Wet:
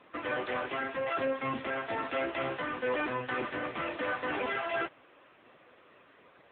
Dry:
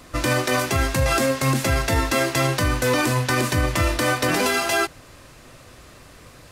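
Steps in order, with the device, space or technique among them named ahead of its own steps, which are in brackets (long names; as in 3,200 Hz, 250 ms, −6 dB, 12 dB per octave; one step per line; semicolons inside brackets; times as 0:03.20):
telephone (band-pass filter 300–3,600 Hz; soft clipping −17 dBFS, distortion −17 dB; level −6 dB; AMR narrowband 6.7 kbit/s 8,000 Hz)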